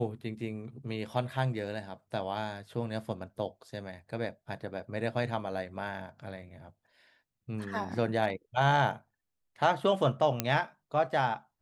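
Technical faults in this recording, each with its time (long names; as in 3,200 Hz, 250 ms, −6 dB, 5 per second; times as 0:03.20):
0:10.40: click −11 dBFS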